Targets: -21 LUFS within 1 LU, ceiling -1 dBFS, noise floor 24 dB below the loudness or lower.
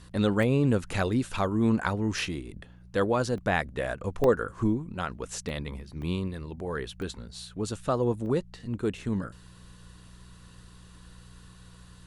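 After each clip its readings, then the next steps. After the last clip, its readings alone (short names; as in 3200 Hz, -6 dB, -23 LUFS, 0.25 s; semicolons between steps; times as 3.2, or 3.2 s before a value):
dropouts 7; longest dropout 1.1 ms; hum 60 Hz; harmonics up to 180 Hz; hum level -50 dBFS; loudness -29.0 LUFS; peak -10.5 dBFS; loudness target -21.0 LUFS
-> interpolate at 0.43/3.38/4.24/5.49/6.02/7.02/8.26, 1.1 ms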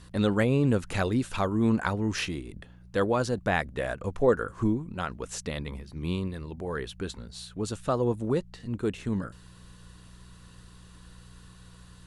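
dropouts 0; hum 60 Hz; harmonics up to 180 Hz; hum level -50 dBFS
-> de-hum 60 Hz, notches 3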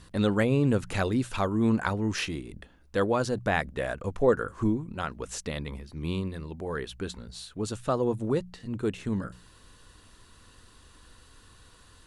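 hum none; loudness -29.5 LUFS; peak -10.5 dBFS; loudness target -21.0 LUFS
-> gain +8.5 dB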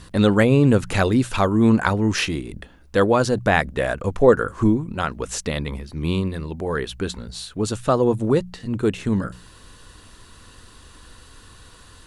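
loudness -21.0 LUFS; peak -2.0 dBFS; noise floor -48 dBFS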